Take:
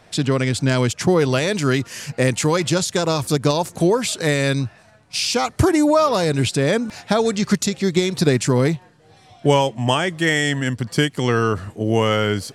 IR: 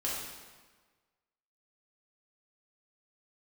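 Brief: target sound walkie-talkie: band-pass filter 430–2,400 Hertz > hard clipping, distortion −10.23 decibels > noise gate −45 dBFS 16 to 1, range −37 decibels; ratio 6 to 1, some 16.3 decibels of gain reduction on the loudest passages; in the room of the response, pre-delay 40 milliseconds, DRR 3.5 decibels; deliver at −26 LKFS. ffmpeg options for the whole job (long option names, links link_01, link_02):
-filter_complex "[0:a]acompressor=threshold=-30dB:ratio=6,asplit=2[link_01][link_02];[1:a]atrim=start_sample=2205,adelay=40[link_03];[link_02][link_03]afir=irnorm=-1:irlink=0,volume=-8.5dB[link_04];[link_01][link_04]amix=inputs=2:normalize=0,highpass=430,lowpass=2400,asoftclip=type=hard:threshold=-33dB,agate=range=-37dB:threshold=-45dB:ratio=16,volume=12dB"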